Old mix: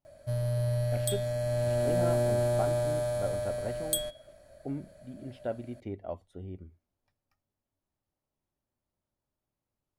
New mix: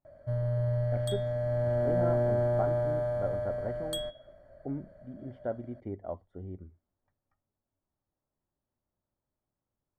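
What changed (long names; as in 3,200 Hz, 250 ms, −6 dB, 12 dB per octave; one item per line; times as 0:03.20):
second sound +11.0 dB
master: add Savitzky-Golay smoothing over 41 samples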